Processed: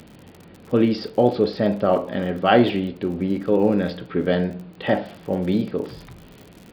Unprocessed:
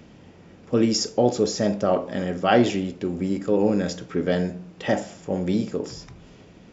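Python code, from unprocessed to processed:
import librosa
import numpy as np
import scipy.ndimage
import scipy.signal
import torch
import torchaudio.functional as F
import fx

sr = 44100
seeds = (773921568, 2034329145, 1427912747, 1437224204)

y = scipy.signal.sosfilt(scipy.signal.cheby1(6, 1.0, 4500.0, 'lowpass', fs=sr, output='sos'), x)
y = fx.dmg_crackle(y, sr, seeds[0], per_s=fx.steps((0.0, 71.0), (3.92, 20.0), (5.05, 100.0)), level_db=-37.0)
y = F.gain(torch.from_numpy(y), 3.0).numpy()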